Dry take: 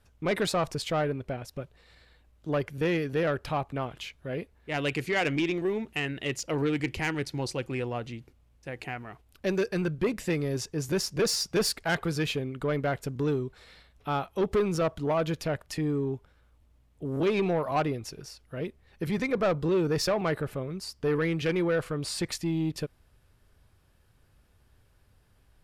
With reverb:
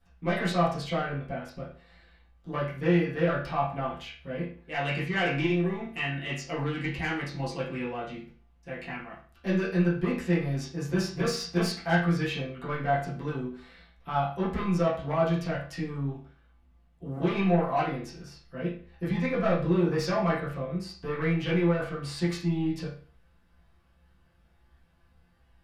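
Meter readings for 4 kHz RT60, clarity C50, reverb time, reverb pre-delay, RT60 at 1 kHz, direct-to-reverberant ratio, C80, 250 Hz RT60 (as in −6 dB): 0.40 s, 5.5 dB, 0.45 s, 6 ms, 0.45 s, −11.0 dB, 10.5 dB, 0.45 s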